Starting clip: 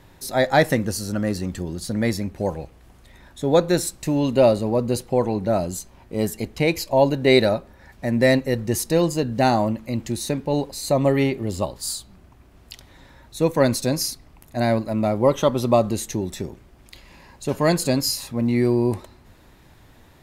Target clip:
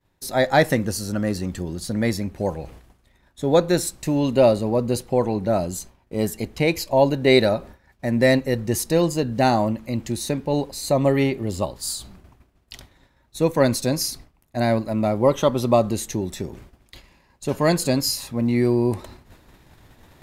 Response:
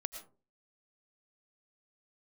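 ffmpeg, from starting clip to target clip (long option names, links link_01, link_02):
-af "agate=range=-33dB:threshold=-38dB:ratio=3:detection=peak,areverse,acompressor=mode=upward:threshold=-34dB:ratio=2.5,areverse"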